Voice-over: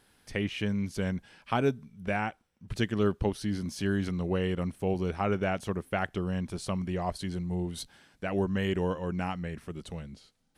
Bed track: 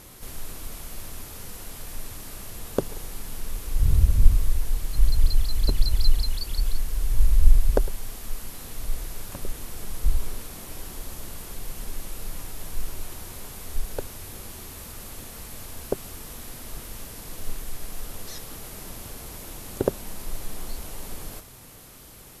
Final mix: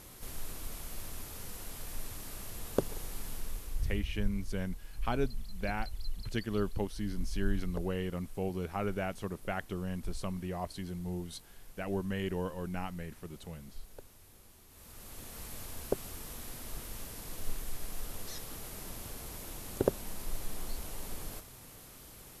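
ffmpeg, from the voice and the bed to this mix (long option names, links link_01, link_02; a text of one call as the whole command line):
ffmpeg -i stem1.wav -i stem2.wav -filter_complex "[0:a]adelay=3550,volume=-6dB[link_01];[1:a]volume=9dB,afade=type=out:start_time=3.27:duration=0.76:silence=0.199526,afade=type=in:start_time=14.68:duration=0.77:silence=0.199526[link_02];[link_01][link_02]amix=inputs=2:normalize=0" out.wav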